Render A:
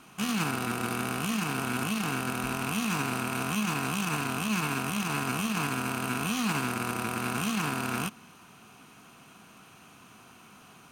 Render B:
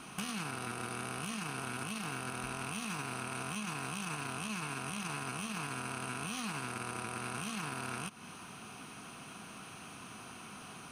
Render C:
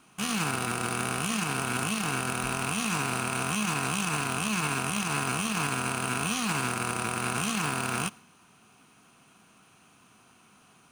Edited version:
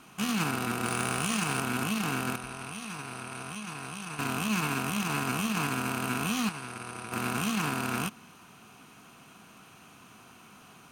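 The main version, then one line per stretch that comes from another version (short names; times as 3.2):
A
0.86–1.6 from C
2.36–4.19 from B
6.49–7.12 from B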